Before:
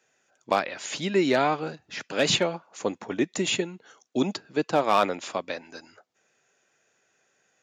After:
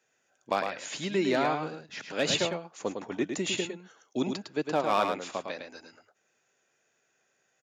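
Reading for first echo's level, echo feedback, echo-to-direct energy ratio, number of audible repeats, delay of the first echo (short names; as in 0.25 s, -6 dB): -6.0 dB, no steady repeat, -6.0 dB, 1, 0.106 s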